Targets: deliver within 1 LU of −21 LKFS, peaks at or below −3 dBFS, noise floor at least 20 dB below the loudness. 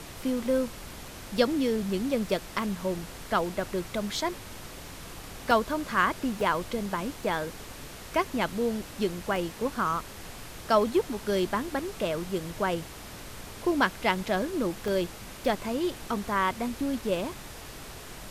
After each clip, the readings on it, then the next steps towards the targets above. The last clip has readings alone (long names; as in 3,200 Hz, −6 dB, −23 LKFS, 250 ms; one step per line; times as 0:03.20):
number of dropouts 5; longest dropout 1.3 ms; background noise floor −44 dBFS; target noise floor −50 dBFS; integrated loudness −29.5 LKFS; sample peak −9.5 dBFS; target loudness −21.0 LKFS
→ repair the gap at 0:00.46/0:05.51/0:06.41/0:09.36/0:14.88, 1.3 ms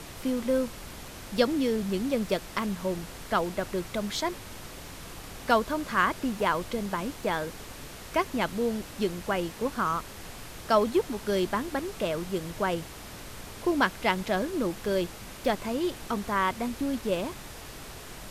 number of dropouts 0; background noise floor −44 dBFS; target noise floor −50 dBFS
→ noise reduction from a noise print 6 dB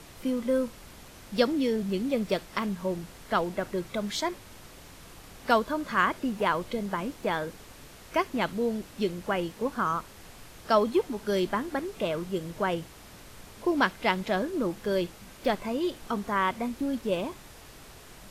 background noise floor −49 dBFS; target noise floor −50 dBFS
→ noise reduction from a noise print 6 dB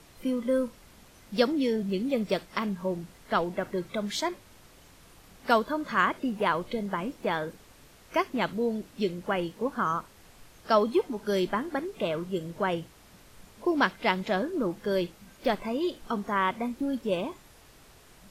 background noise floor −55 dBFS; integrated loudness −29.5 LKFS; sample peak −9.5 dBFS; target loudness −21.0 LKFS
→ level +8.5 dB
brickwall limiter −3 dBFS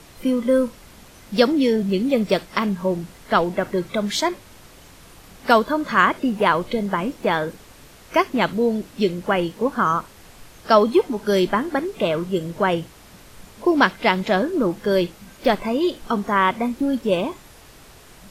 integrated loudness −21.0 LKFS; sample peak −3.0 dBFS; background noise floor −47 dBFS